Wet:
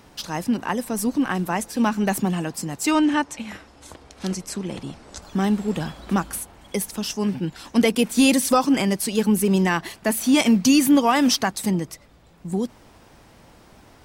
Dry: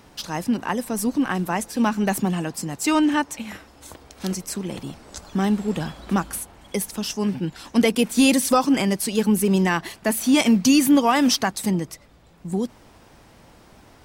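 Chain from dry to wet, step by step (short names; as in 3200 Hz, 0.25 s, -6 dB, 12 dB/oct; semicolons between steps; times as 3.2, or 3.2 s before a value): 2.91–5.22 Bessel low-pass 9000 Hz, order 8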